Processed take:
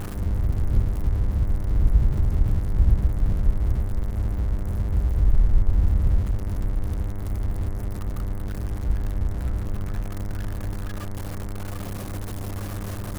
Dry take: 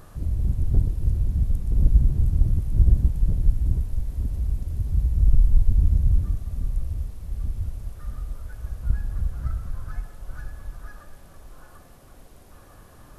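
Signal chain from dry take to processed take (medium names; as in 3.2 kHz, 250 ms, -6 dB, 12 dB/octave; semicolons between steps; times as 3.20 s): jump at every zero crossing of -23.5 dBFS; bass shelf 400 Hz +6.5 dB; mains buzz 100 Hz, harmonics 22, -25 dBFS -8 dB/octave; trim -9 dB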